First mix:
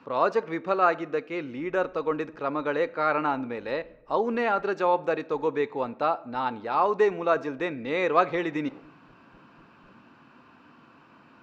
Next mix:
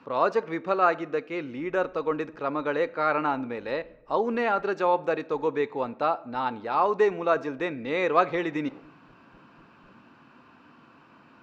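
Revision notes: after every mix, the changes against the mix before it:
none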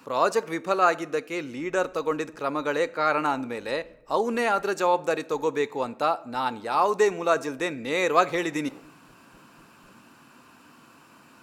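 master: remove air absorption 250 m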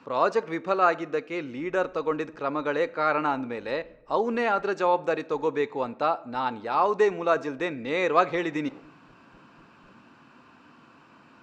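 master: add air absorption 160 m

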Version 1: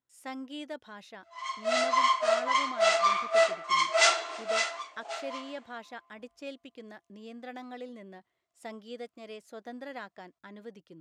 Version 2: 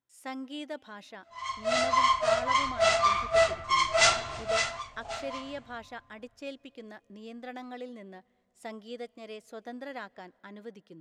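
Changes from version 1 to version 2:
background: remove Chebyshev high-pass 280 Hz, order 10; reverb: on, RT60 2.4 s

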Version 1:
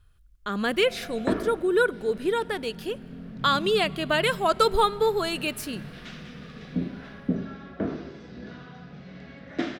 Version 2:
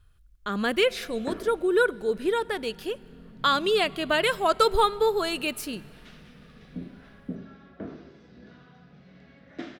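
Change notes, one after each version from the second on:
background -9.0 dB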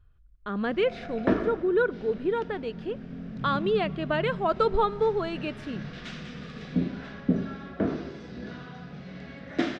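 speech: add tape spacing loss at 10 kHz 33 dB; background +11.0 dB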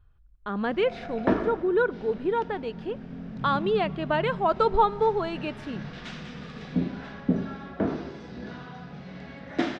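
master: add bell 880 Hz +7 dB 0.46 oct

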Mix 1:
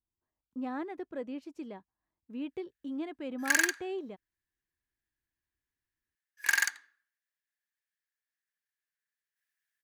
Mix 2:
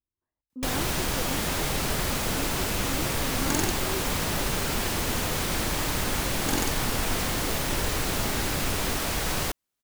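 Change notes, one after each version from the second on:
first sound: unmuted; second sound: remove resonant high-pass 1700 Hz, resonance Q 10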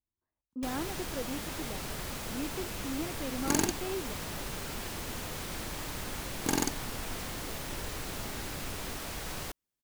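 first sound -11.0 dB

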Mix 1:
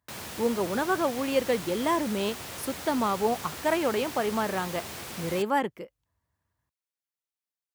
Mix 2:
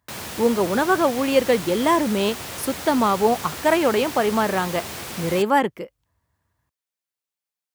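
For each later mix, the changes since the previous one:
speech +7.5 dB; background +6.0 dB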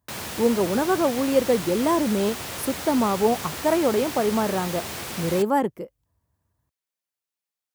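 speech: add bell 2600 Hz -12 dB 2.4 oct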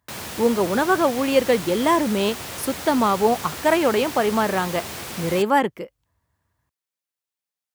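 speech: add bell 2600 Hz +12 dB 2.4 oct

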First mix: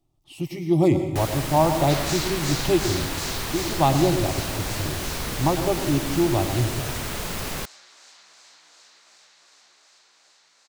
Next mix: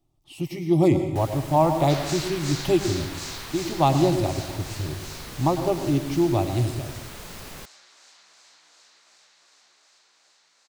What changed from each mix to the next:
first sound -10.0 dB; second sound -3.0 dB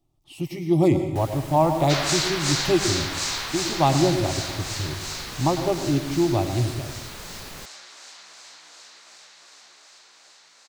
second sound +9.0 dB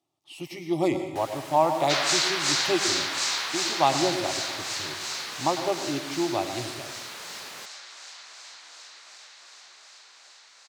master: add weighting filter A

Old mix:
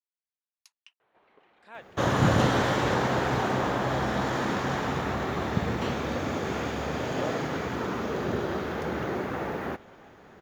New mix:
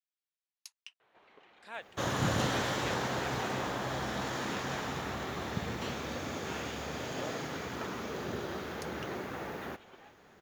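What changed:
second sound -9.0 dB; master: add high shelf 2800 Hz +10 dB

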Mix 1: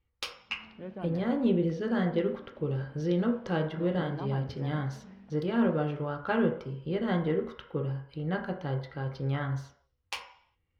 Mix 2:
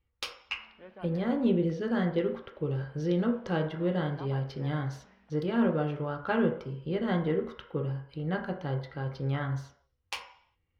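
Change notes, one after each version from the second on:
background: add band-pass 1900 Hz, Q 0.53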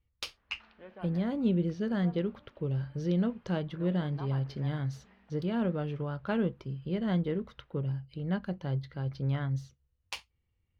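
reverb: off

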